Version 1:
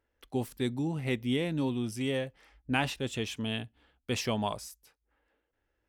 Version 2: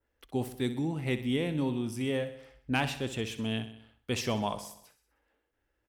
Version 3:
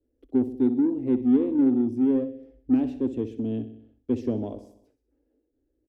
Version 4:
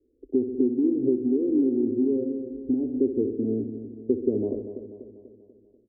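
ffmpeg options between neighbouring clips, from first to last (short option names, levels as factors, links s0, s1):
-filter_complex "[0:a]adynamicequalizer=threshold=0.00282:dfrequency=4700:dqfactor=0.77:tfrequency=4700:tqfactor=0.77:attack=5:release=100:ratio=0.375:range=2:mode=cutabove:tftype=bell,asoftclip=type=hard:threshold=0.133,asplit=2[s0][s1];[s1]aecho=0:1:63|126|189|252|315|378:0.237|0.135|0.077|0.0439|0.025|0.0143[s2];[s0][s2]amix=inputs=2:normalize=0"
-filter_complex "[0:a]firequalizer=gain_entry='entry(110,0);entry(160,-21);entry(250,12);entry(980,-22);entry(6400,-24);entry(9500,-29)':delay=0.05:min_phase=1,asplit=2[s0][s1];[s1]asoftclip=type=tanh:threshold=0.0447,volume=0.422[s2];[s0][s2]amix=inputs=2:normalize=0"
-af "acompressor=threshold=0.0447:ratio=6,lowpass=f=400:t=q:w=4.1,aecho=1:1:244|488|732|976|1220|1464:0.316|0.164|0.0855|0.0445|0.0231|0.012"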